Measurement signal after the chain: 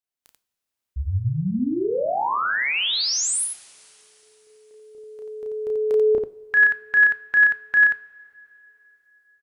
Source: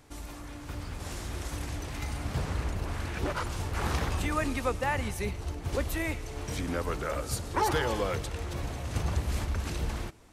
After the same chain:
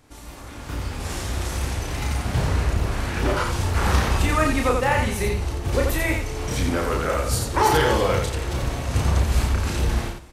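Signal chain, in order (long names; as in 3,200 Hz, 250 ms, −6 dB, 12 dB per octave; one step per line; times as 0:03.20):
automatic gain control gain up to 6.5 dB
on a send: loudspeakers that aren't time-aligned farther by 11 metres −3 dB, 30 metres −4 dB
on the sum: coupled-rooms reverb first 0.43 s, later 3.8 s, from −18 dB, DRR 13.5 dB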